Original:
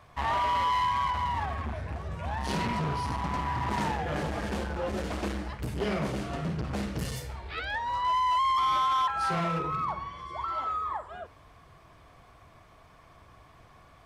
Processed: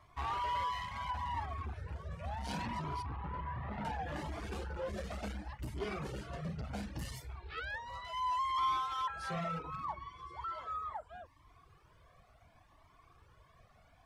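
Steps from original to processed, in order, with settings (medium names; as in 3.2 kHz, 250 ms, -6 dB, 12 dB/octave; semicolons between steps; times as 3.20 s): reverb removal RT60 0.53 s; 3.02–3.85 s: distance through air 470 m; Shepard-style flanger rising 0.7 Hz; trim -3.5 dB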